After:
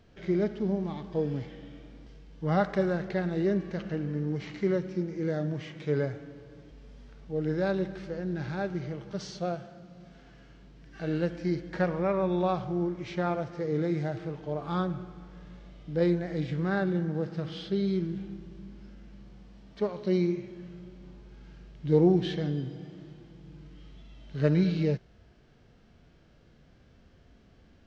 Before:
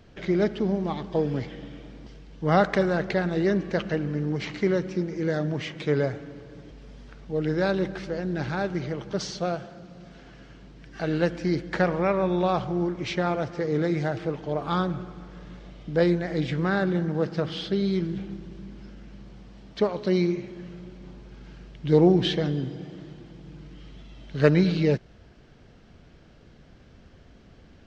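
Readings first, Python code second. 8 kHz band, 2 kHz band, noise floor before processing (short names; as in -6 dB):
n/a, -7.5 dB, -52 dBFS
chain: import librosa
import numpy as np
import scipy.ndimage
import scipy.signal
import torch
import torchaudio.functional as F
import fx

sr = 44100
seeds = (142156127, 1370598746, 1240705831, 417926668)

y = fx.hpss(x, sr, part='percussive', gain_db=-11)
y = F.gain(torch.from_numpy(y), -3.0).numpy()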